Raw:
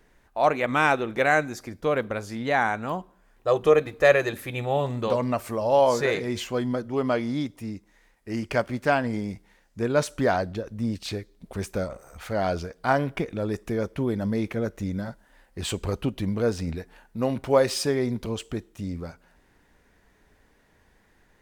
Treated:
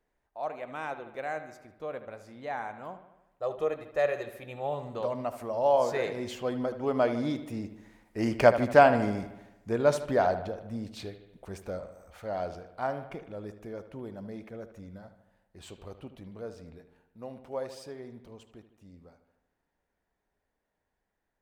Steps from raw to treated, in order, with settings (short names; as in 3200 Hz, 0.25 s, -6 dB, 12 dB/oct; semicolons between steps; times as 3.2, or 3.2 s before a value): Doppler pass-by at 8.41, 5 m/s, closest 4.1 m; bell 680 Hz +7 dB 1.3 oct; on a send: analogue delay 76 ms, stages 2048, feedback 58%, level -12 dB